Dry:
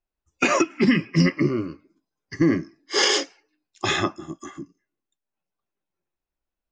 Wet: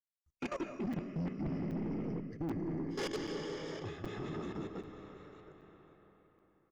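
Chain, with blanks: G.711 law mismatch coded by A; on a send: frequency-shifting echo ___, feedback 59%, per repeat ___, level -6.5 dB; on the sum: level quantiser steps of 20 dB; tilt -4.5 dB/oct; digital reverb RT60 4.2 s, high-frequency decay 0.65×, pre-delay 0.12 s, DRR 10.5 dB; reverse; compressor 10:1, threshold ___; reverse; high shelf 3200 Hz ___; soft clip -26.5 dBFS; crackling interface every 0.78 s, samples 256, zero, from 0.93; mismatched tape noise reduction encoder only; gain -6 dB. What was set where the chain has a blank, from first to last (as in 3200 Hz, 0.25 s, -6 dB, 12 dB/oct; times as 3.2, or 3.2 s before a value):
0.18 s, +30 Hz, -23 dBFS, +4.5 dB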